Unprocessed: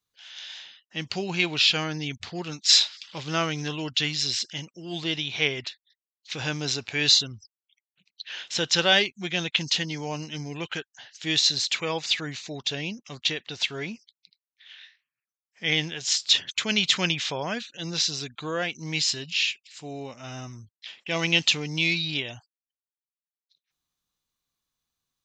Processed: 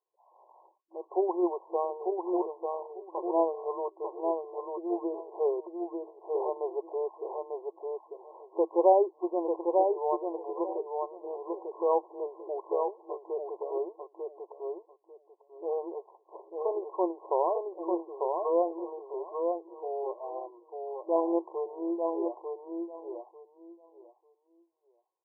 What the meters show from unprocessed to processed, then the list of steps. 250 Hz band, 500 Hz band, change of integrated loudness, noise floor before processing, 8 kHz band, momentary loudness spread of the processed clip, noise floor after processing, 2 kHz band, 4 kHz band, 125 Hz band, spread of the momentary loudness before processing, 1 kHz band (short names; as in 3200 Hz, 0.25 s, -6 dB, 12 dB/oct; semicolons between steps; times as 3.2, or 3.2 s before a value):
-1.5 dB, +6.5 dB, -7.5 dB, under -85 dBFS, under -40 dB, 13 LU, -70 dBFS, under -40 dB, under -40 dB, under -40 dB, 18 LU, +5.0 dB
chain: FFT band-pass 330–1100 Hz; feedback echo 0.895 s, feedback 19%, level -4 dB; gain +5 dB